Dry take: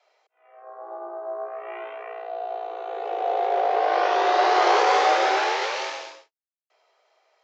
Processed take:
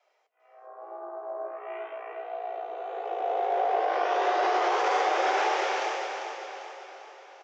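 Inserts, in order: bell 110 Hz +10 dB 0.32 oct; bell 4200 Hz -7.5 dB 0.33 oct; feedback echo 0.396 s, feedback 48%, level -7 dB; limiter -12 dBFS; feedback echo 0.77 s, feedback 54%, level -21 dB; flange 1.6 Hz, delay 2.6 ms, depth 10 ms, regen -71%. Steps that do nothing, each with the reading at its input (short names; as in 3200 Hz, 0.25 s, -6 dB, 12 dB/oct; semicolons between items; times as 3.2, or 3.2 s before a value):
bell 110 Hz: input band starts at 300 Hz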